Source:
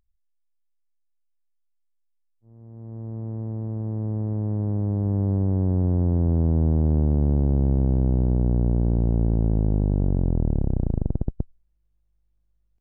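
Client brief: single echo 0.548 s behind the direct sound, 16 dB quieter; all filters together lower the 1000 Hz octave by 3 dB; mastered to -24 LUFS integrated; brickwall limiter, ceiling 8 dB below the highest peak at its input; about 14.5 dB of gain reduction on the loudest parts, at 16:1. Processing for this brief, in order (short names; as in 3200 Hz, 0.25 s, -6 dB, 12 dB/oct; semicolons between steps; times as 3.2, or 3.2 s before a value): bell 1000 Hz -4.5 dB; compressor 16:1, threshold -30 dBFS; limiter -28 dBFS; echo 0.548 s -16 dB; gain +14 dB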